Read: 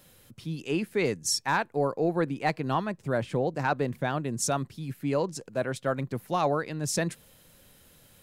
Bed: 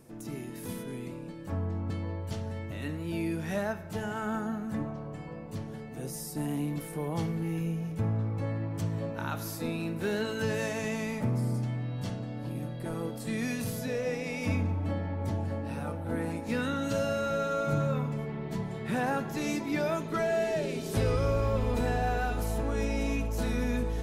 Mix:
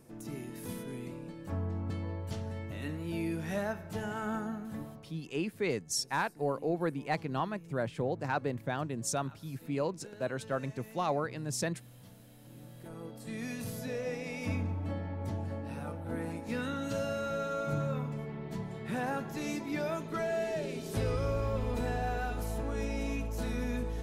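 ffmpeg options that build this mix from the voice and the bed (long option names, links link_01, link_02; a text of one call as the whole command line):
ffmpeg -i stem1.wav -i stem2.wav -filter_complex "[0:a]adelay=4650,volume=-5.5dB[link_01];[1:a]volume=13dB,afade=type=out:start_time=4.34:duration=0.84:silence=0.133352,afade=type=in:start_time=12.38:duration=1.47:silence=0.16788[link_02];[link_01][link_02]amix=inputs=2:normalize=0" out.wav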